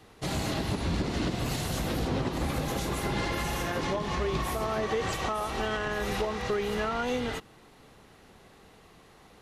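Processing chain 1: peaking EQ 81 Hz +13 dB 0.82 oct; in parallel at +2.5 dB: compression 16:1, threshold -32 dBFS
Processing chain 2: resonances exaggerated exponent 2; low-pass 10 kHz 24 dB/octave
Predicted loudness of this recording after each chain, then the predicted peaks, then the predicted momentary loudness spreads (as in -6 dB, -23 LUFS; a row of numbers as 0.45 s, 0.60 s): -25.0 LUFS, -31.5 LUFS; -10.0 dBFS, -20.0 dBFS; 2 LU, 2 LU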